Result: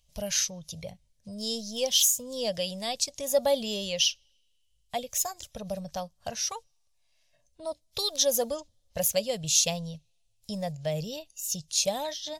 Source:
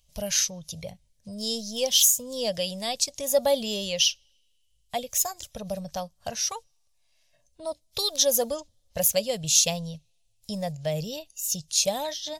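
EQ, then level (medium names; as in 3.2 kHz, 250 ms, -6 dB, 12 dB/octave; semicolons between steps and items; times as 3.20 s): treble shelf 9 kHz -4 dB; -2.0 dB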